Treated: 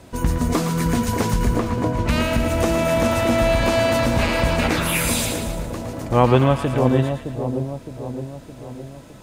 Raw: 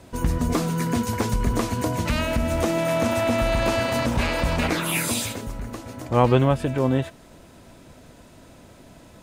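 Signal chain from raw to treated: 1.54–2.09 s: low-pass 1.6 kHz 6 dB/octave; two-band feedback delay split 840 Hz, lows 614 ms, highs 113 ms, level -7 dB; trim +2.5 dB

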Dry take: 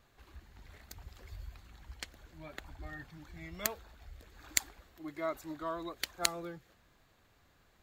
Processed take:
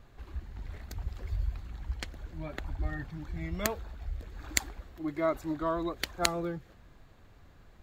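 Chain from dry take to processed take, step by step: tilt EQ -2 dB/octave; trim +6 dB

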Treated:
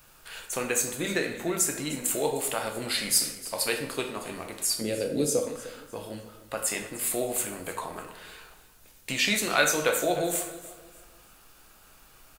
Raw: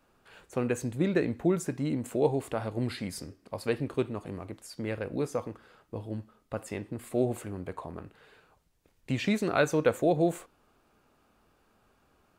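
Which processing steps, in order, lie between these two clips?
4.81–5.43 s: graphic EQ 125/250/500/1000/2000/4000/8000 Hz +8/+10/+8/-11/-8/+3/+5 dB; in parallel at +2.5 dB: compression, threshold -35 dBFS, peak gain reduction 17.5 dB; on the sum: tilt EQ +4.5 dB/octave; added noise brown -59 dBFS; on a send: feedback delay 305 ms, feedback 33%, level -16.5 dB; on the sum: plate-style reverb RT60 0.72 s, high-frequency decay 0.75×, DRR 3 dB; trim -1 dB

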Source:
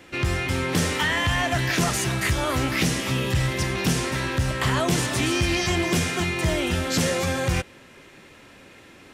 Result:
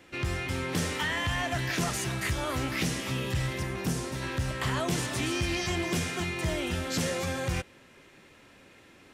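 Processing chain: 3.58–4.21 s: peaking EQ 5.7 kHz -> 1.7 kHz -7 dB 1.7 oct; trim -7 dB

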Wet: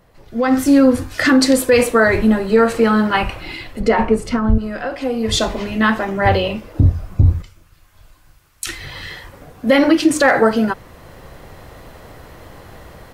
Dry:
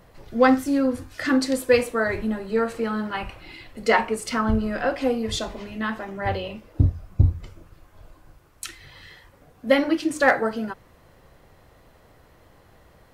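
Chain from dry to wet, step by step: 7.42–8.67 s: amplifier tone stack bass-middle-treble 5-5-5; peak limiter -16 dBFS, peak gain reduction 10 dB; 3.80–4.58 s: tilt EQ -3 dB/octave; level rider gain up to 16.5 dB; trim -1.5 dB

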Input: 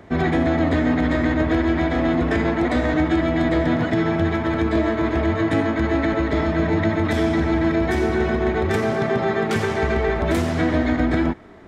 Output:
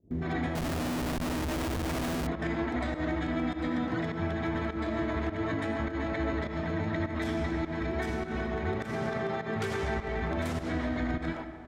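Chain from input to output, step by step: 3.28–3.89 s: comb 3.9 ms, depth 93%; peak limiter -15 dBFS, peak gain reduction 8.5 dB; bands offset in time lows, highs 110 ms, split 410 Hz; volume shaper 102 bpm, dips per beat 1, -21 dB, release 128 ms; reverberation RT60 1.7 s, pre-delay 60 ms, DRR 10 dB; 0.55–2.27 s: Schmitt trigger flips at -29.5 dBFS; trim -7.5 dB

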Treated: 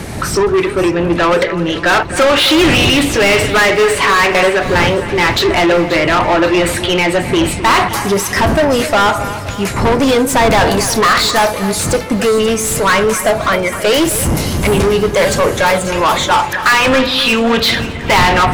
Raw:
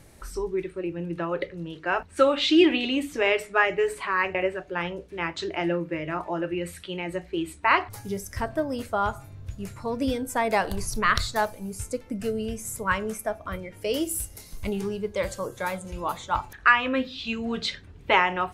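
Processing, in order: wind noise 91 Hz -28 dBFS; overdrive pedal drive 36 dB, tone 4.4 kHz, clips at -3 dBFS; two-band feedback delay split 2.5 kHz, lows 263 ms, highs 535 ms, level -12.5 dB

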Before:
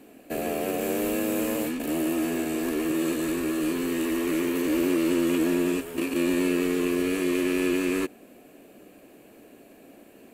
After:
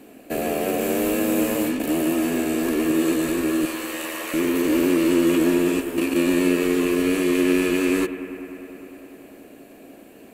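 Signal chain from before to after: 3.65–4.34 s: steep high-pass 510 Hz 48 dB/octave; on a send: bucket-brigade echo 100 ms, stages 2048, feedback 84%, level -15 dB; on the sum: trim +4.5 dB

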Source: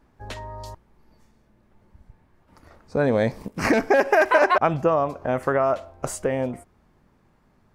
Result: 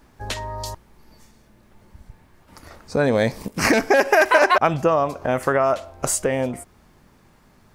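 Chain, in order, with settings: treble shelf 2.7 kHz +10 dB; in parallel at 0 dB: compression, threshold -33 dBFS, peak gain reduction 20 dB

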